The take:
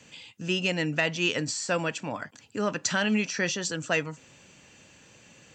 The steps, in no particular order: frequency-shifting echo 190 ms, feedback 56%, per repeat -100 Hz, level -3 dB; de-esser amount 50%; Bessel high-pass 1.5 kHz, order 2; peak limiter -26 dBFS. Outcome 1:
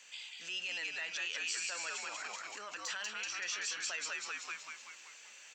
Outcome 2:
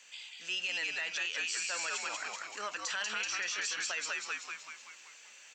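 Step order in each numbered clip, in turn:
frequency-shifting echo > de-esser > peak limiter > Bessel high-pass; frequency-shifting echo > Bessel high-pass > peak limiter > de-esser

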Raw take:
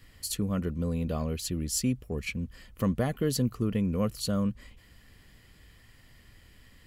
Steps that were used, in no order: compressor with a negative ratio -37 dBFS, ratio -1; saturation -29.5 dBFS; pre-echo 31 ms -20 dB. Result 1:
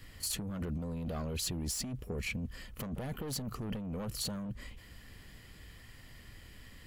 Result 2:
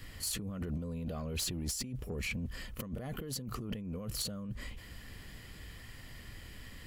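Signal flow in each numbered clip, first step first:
saturation > pre-echo > compressor with a negative ratio; pre-echo > compressor with a negative ratio > saturation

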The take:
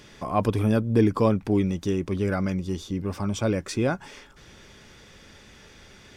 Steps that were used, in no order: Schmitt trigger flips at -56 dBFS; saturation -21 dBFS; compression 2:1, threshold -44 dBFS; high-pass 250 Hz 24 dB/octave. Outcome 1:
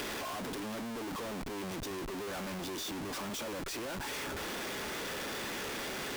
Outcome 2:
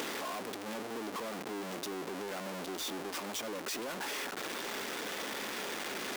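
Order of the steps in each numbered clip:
saturation > high-pass > Schmitt trigger > compression; Schmitt trigger > high-pass > saturation > compression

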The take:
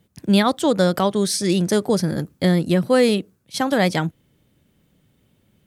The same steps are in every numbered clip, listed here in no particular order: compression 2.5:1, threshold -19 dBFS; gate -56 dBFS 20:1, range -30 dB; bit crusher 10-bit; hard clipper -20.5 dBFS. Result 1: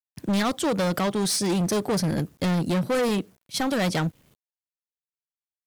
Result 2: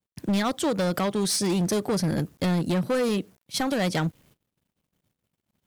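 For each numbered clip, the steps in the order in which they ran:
hard clipper > compression > gate > bit crusher; bit crusher > compression > hard clipper > gate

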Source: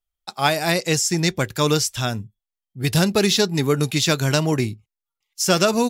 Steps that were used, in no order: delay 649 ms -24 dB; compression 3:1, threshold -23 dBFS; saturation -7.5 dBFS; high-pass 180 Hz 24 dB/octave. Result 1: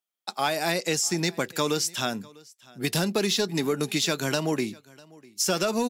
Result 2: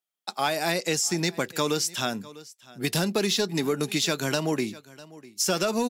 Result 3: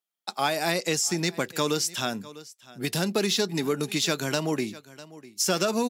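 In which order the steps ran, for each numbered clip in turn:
high-pass > saturation > compression > delay; high-pass > saturation > delay > compression; delay > saturation > compression > high-pass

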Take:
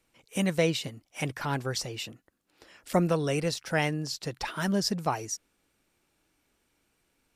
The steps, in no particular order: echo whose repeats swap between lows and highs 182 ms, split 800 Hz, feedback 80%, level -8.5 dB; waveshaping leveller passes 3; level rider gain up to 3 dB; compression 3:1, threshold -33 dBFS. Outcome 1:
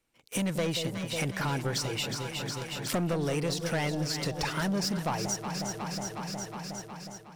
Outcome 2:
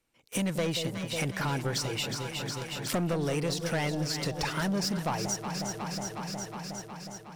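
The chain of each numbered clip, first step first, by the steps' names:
waveshaping leveller > echo whose repeats swap between lows and highs > level rider > compression; level rider > waveshaping leveller > echo whose repeats swap between lows and highs > compression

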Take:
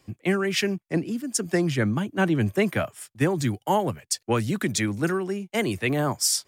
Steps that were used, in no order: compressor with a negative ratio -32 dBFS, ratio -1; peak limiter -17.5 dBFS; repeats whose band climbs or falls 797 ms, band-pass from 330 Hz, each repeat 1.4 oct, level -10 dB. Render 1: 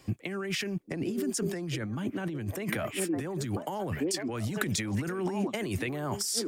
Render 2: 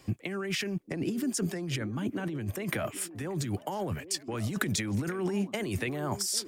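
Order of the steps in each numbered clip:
repeats whose band climbs or falls > peak limiter > compressor with a negative ratio; peak limiter > compressor with a negative ratio > repeats whose band climbs or falls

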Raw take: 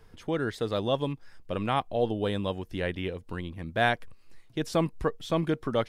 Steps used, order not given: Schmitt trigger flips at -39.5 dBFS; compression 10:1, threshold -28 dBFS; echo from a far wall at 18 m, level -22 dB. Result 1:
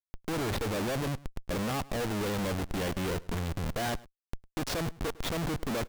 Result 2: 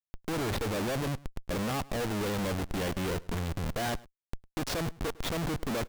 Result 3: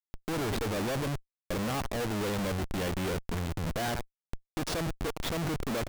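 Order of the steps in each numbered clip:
Schmitt trigger > echo from a far wall > compression; Schmitt trigger > compression > echo from a far wall; echo from a far wall > Schmitt trigger > compression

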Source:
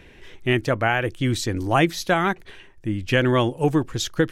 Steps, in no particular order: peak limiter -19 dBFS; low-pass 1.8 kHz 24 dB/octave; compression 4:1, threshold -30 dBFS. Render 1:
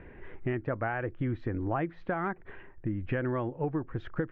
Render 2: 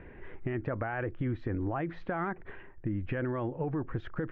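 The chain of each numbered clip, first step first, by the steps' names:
low-pass > compression > peak limiter; peak limiter > low-pass > compression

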